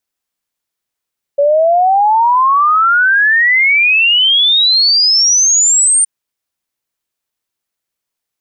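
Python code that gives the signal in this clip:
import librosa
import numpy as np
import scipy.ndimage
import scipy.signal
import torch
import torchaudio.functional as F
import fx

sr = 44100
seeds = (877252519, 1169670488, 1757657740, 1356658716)

y = fx.ess(sr, length_s=4.67, from_hz=560.0, to_hz=9000.0, level_db=-7.0)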